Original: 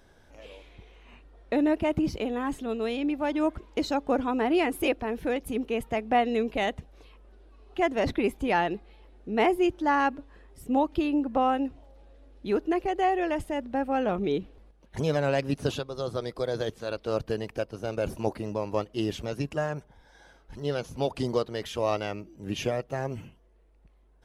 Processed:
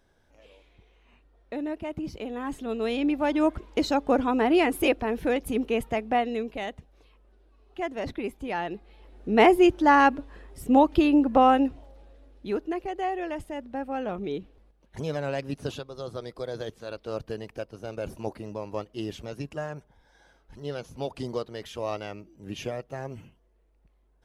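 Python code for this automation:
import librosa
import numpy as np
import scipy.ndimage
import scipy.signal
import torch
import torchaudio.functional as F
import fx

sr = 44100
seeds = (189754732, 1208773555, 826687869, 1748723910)

y = fx.gain(x, sr, db=fx.line((1.95, -8.0), (2.99, 3.0), (5.77, 3.0), (6.62, -6.0), (8.57, -6.0), (9.29, 6.0), (11.58, 6.0), (12.77, -4.5)))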